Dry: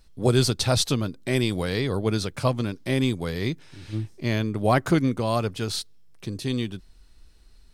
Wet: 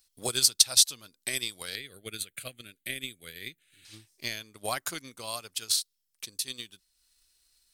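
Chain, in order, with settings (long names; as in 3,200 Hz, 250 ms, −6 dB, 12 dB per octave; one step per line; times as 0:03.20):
first-order pre-emphasis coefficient 0.97
transient designer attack +10 dB, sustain −5 dB
0:01.75–0:03.85: phaser with its sweep stopped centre 2,300 Hz, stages 4
level +1.5 dB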